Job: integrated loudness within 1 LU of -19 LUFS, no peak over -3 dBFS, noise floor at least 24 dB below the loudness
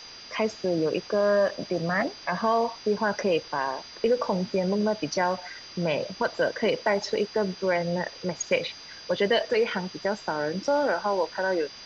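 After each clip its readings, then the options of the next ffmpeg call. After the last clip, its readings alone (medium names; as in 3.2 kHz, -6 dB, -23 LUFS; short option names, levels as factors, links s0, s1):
steady tone 4.8 kHz; tone level -44 dBFS; noise floor -45 dBFS; noise floor target -51 dBFS; loudness -27.0 LUFS; peak level -11.5 dBFS; loudness target -19.0 LUFS
-> -af "bandreject=f=4800:w=30"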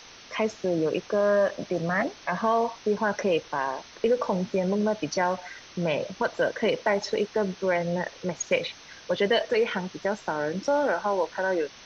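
steady tone not found; noise floor -48 dBFS; noise floor target -51 dBFS
-> -af "afftdn=nr=6:nf=-48"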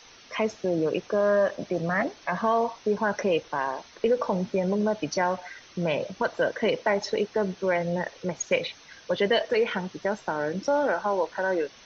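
noise floor -52 dBFS; loudness -27.0 LUFS; peak level -12.0 dBFS; loudness target -19.0 LUFS
-> -af "volume=2.51"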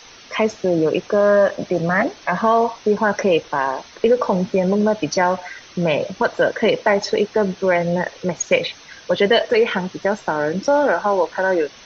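loudness -19.0 LUFS; peak level -4.0 dBFS; noise floor -44 dBFS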